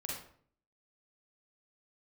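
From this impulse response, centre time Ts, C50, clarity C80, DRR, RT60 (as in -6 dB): 51 ms, 0.5 dB, 6.0 dB, -3.5 dB, 0.55 s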